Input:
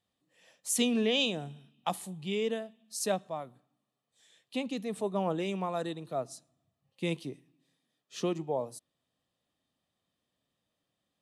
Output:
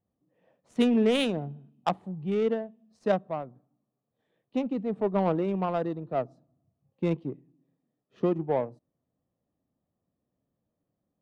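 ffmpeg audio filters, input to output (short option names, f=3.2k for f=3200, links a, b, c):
-af "adynamicsmooth=sensitivity=1.5:basefreq=720,volume=6dB"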